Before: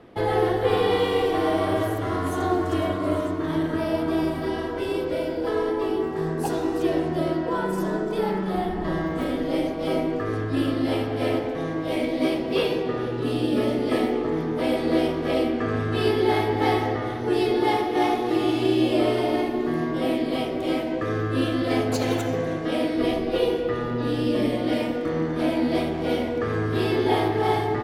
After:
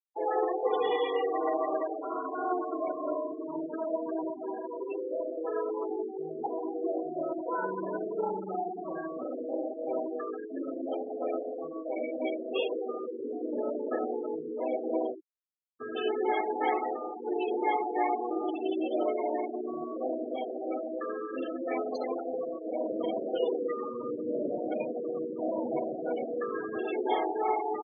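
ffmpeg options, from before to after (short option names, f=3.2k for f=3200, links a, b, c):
-filter_complex "[0:a]asettb=1/sr,asplit=3[a][b][c];[a]atrim=end=7.614[d];[b]atrim=start=7.61:end=8.55,asetpts=PTS-STARTPTS,afade=t=in:d=0.004:c=qsin,afade=t=out:st=0.936:d=0.004:c=qsin,lowshelf=f=150:g=10[e];[c]atrim=start=8.546[f];[d][e]acrossfade=d=0.004:c1=hsin:c2=qsin[g];[g][f]acrossfade=d=0.004:c1=qsin:c2=hsin,asplit=3[h][i][j];[h]afade=t=out:st=22.82:d=0.02[k];[i]asplit=9[l][m][n][o][p][q][r][s][t];[m]adelay=94,afreqshift=-100,volume=-6dB[u];[n]adelay=188,afreqshift=-200,volume=-10.6dB[v];[o]adelay=282,afreqshift=-300,volume=-15.2dB[w];[p]adelay=376,afreqshift=-400,volume=-19.7dB[x];[q]adelay=470,afreqshift=-500,volume=-24.3dB[y];[r]adelay=564,afreqshift=-600,volume=-28.9dB[z];[s]adelay=658,afreqshift=-700,volume=-33.5dB[aa];[t]adelay=752,afreqshift=-800,volume=-38.1dB[ab];[l][u][v][w][x][y][z][aa][ab]amix=inputs=9:normalize=0,afade=t=in:st=22.82:d=0.02,afade=t=out:st=26.77:d=0.02[ac];[j]afade=t=in:st=26.77:d=0.02[ad];[k][ac][ad]amix=inputs=3:normalize=0,asplit=2[ae][af];[ae]atrim=end=15.8,asetpts=PTS-STARTPTS,afade=t=out:st=15.12:d=0.68:c=exp[ag];[af]atrim=start=15.8,asetpts=PTS-STARTPTS,afade=t=in:d=0.004:c=hsin[ah];[ag][ah]concat=n=2:v=0:a=1,afftfilt=real='re*gte(hypot(re,im),0.0891)':imag='im*gte(hypot(re,im),0.0891)':win_size=1024:overlap=0.75,highpass=470,afftfilt=real='re*gte(hypot(re,im),0.0282)':imag='im*gte(hypot(re,im),0.0282)':win_size=1024:overlap=0.75,volume=-3.5dB"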